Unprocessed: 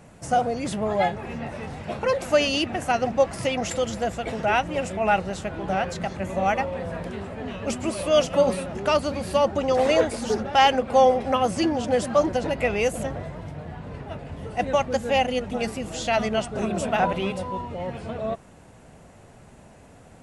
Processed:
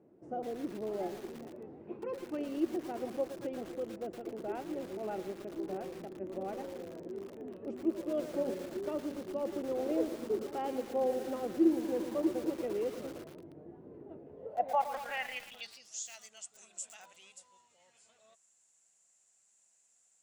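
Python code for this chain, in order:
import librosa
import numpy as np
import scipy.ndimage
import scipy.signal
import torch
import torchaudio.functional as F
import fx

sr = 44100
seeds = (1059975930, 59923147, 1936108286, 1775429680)

y = fx.graphic_eq_31(x, sr, hz=(630, 1000, 2500), db=(-11, 5, 9), at=(1.87, 2.39))
y = fx.filter_sweep_bandpass(y, sr, from_hz=350.0, to_hz=7300.0, start_s=14.24, end_s=16.05, q=5.8)
y = fx.echo_crushed(y, sr, ms=114, feedback_pct=80, bits=7, wet_db=-10.5)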